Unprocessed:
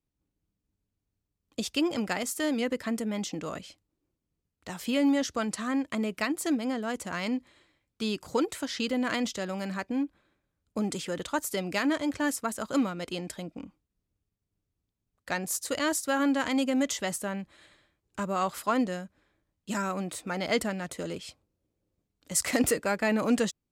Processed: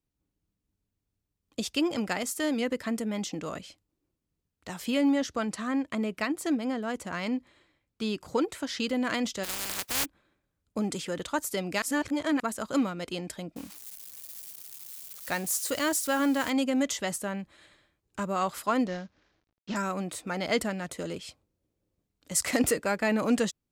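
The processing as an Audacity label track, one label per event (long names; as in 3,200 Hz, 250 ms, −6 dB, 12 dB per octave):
5.010000	8.670000	high-shelf EQ 4,000 Hz −5 dB
9.430000	10.040000	compressing power law on the bin magnitudes exponent 0.12
11.820000	12.400000	reverse
13.560000	16.500000	spike at every zero crossing of −32 dBFS
18.870000	19.760000	variable-slope delta modulation 32 kbit/s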